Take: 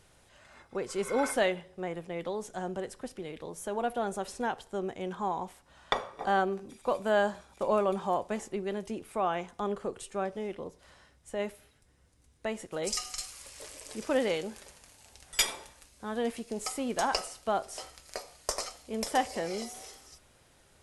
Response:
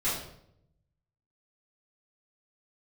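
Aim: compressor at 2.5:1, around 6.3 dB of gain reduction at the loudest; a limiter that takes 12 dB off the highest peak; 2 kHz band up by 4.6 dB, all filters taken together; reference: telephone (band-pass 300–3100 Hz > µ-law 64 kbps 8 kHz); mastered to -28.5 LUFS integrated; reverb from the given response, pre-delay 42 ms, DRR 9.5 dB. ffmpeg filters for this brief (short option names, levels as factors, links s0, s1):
-filter_complex "[0:a]equalizer=f=2000:t=o:g=6.5,acompressor=threshold=0.0355:ratio=2.5,alimiter=level_in=1.06:limit=0.0631:level=0:latency=1,volume=0.944,asplit=2[s0][s1];[1:a]atrim=start_sample=2205,adelay=42[s2];[s1][s2]afir=irnorm=-1:irlink=0,volume=0.119[s3];[s0][s3]amix=inputs=2:normalize=0,highpass=300,lowpass=3100,volume=3.16" -ar 8000 -c:a pcm_mulaw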